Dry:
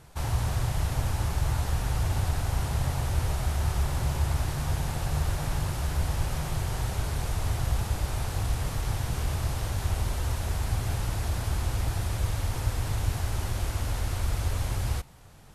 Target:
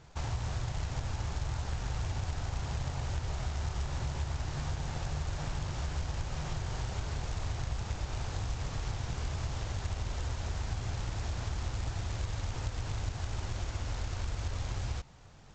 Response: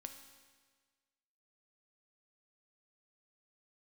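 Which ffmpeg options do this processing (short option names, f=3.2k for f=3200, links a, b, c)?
-af "acompressor=threshold=-29dB:ratio=3,aresample=16000,acrusher=bits=4:mode=log:mix=0:aa=0.000001,aresample=44100,volume=-3dB"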